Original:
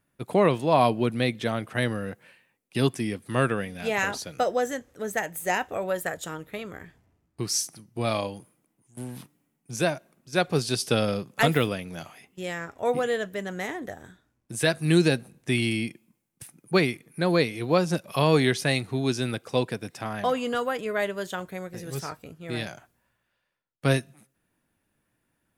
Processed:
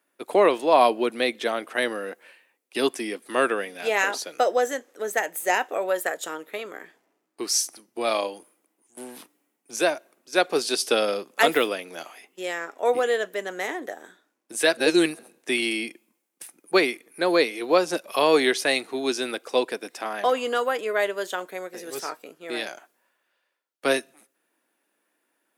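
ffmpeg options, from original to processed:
-filter_complex "[0:a]asplit=3[a][b][c];[a]atrim=end=14.772[d];[b]atrim=start=14.768:end=15.192,asetpts=PTS-STARTPTS,areverse[e];[c]atrim=start=15.188[f];[d][e]acrossfade=d=0.004:c1=hsin:c2=hsin[g];[g][f]acrossfade=d=0.004:c1=hsin:c2=hsin,highpass=f=310:w=0.5412,highpass=f=310:w=1.3066,volume=3.5dB"

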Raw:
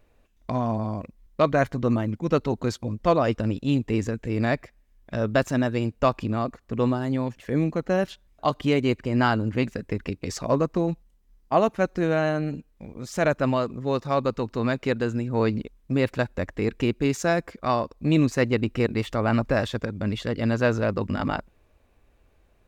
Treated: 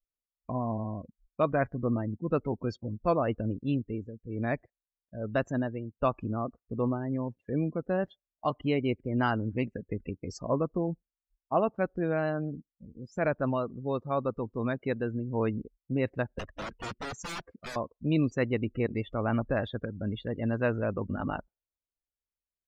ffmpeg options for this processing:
-filter_complex "[0:a]asettb=1/sr,asplit=3[a][b][c];[a]atrim=end=3.674[d];[b]atrim=start=3.67:end=6,asetpts=PTS-STARTPTS,afade=t=in:d=0.004:c=qsin,afade=t=out:st=2.326:d=0.004:c=qsin,tremolo=f=1.1:d=0.6[e];[c]atrim=start=5.996[f];[d][e]acrossfade=d=0.004:c1=hsin:c2=qsin[g];[g][f]acrossfade=d=0.004:c1=qsin:c2=hsin,asettb=1/sr,asplit=3[h][i][j];[h]atrim=end=16.394[k];[i]atrim=start=16.39:end=17.76,asetpts=PTS-STARTPTS,afade=t=in:d=0.004:c=qsin,afade=t=out:st=1.366:d=0.004:c=qsin,aeval=exprs='(mod(15*val(0)+1,2)-1)/15':c=same[l];[j]atrim=start=17.756[m];[k][l]acrossfade=d=0.004:c1=hsin:c2=qsin[n];[n][m]acrossfade=d=0.004:c1=qsin:c2=hsin,afftdn=nr=36:nf=-32,volume=-6dB"

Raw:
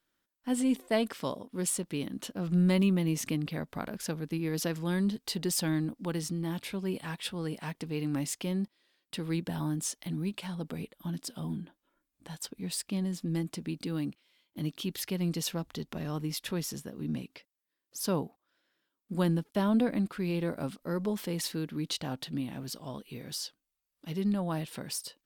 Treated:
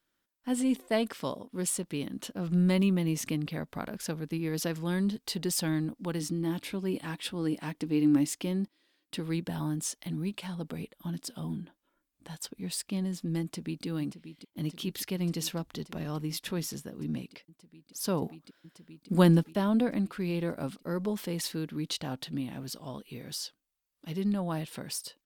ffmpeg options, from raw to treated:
-filter_complex "[0:a]asettb=1/sr,asplit=3[a][b][c];[a]atrim=end=6.204[d];[b]atrim=start=6.2:end=9.2,asetpts=PTS-STARTPTS,afade=t=in:d=0.004:c=qsin,afade=t=out:st=2.996:d=0.004:c=qsin,equalizer=f=300:w=5.1:g=11[e];[c]atrim=start=9.196[f];[d][e]acrossfade=d=0.004:c1=hsin:c2=qsin[g];[g][f]acrossfade=d=0.004:c1=qsin:c2=hsin,asplit=2[h][i];[i]afade=t=in:st=13.42:d=0.01,afade=t=out:st=13.86:d=0.01,aecho=0:1:580|1160|1740|2320|2900|3480|4060|4640|5220|5800|6380|6960:0.281838|0.239563|0.203628|0.173084|0.147121|0.125053|0.106295|0.0903509|0.0767983|0.0652785|0.0554867|0.0471637[j];[h][j]amix=inputs=2:normalize=0,asplit=3[k][l][m];[k]atrim=end=18.222[n];[l]atrim=start=18.218:end=19.532,asetpts=PTS-STARTPTS,volume=7dB[o];[m]atrim=start=19.528[p];[n][o]acrossfade=d=0.004:c1=hsin:c2=hsin[q];[q][p]acrossfade=d=0.004:c1=hsin:c2=hsin"

